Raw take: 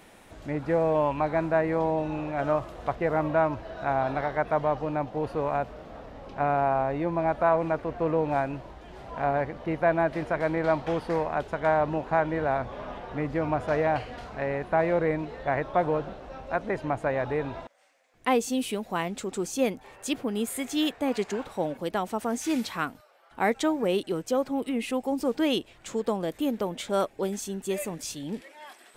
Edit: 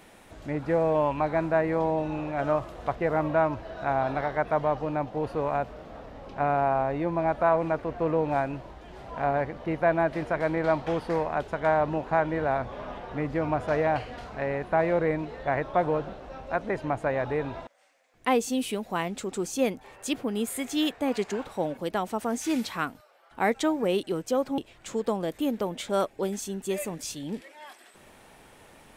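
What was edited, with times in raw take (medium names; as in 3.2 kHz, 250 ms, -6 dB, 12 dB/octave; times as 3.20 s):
24.58–25.58 s: delete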